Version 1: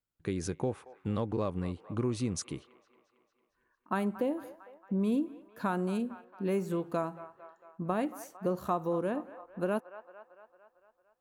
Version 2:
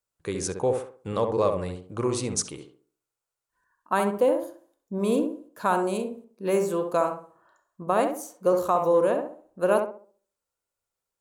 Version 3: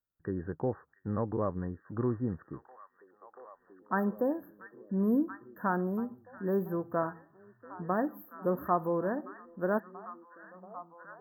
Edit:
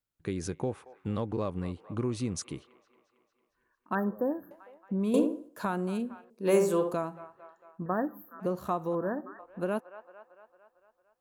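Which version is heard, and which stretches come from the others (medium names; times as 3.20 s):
1
3.95–4.51 s: from 3
5.14–5.65 s: from 2
6.30–6.94 s: from 2
7.86–8.40 s: from 3
8.95–9.39 s: from 3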